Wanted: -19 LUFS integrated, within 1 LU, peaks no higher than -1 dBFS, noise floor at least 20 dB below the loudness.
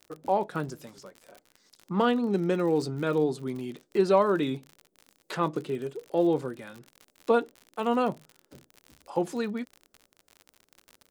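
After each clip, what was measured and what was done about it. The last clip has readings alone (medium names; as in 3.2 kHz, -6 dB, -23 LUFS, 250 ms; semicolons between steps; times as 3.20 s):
tick rate 52 per s; loudness -28.5 LUFS; peak level -9.5 dBFS; loudness target -19.0 LUFS
-> de-click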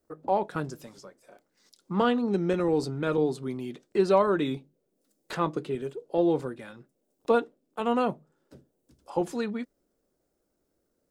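tick rate 0.36 per s; loudness -28.5 LUFS; peak level -9.5 dBFS; loudness target -19.0 LUFS
-> trim +9.5 dB; peak limiter -1 dBFS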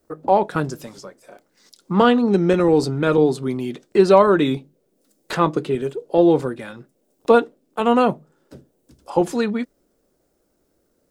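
loudness -19.0 LUFS; peak level -1.0 dBFS; noise floor -67 dBFS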